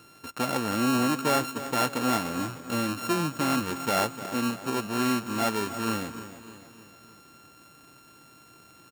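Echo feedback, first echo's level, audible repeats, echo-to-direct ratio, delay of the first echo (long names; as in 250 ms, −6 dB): 51%, −13.0 dB, 4, −11.5 dB, 301 ms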